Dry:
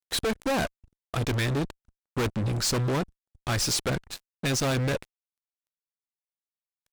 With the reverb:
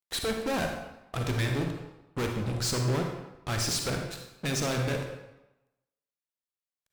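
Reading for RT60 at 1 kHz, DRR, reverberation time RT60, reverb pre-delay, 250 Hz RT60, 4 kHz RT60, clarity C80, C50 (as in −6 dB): 1.0 s, 2.5 dB, 0.95 s, 37 ms, 0.90 s, 0.75 s, 6.5 dB, 4.0 dB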